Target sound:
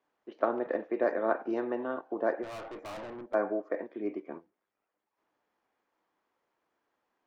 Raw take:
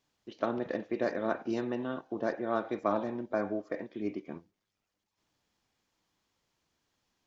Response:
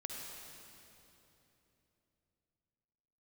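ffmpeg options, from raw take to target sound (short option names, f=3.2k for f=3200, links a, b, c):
-filter_complex "[0:a]acrossover=split=290 2000:gain=0.0891 1 0.1[a][b][c];[a][b][c]amix=inputs=3:normalize=0,asplit=3[d][e][f];[d]afade=t=out:st=2.42:d=0.02[g];[e]aeval=exprs='(tanh(158*val(0)+0.15)-tanh(0.15))/158':c=same,afade=t=in:st=2.42:d=0.02,afade=t=out:st=3.33:d=0.02[h];[f]afade=t=in:st=3.33:d=0.02[i];[g][h][i]amix=inputs=3:normalize=0,volume=4.5dB"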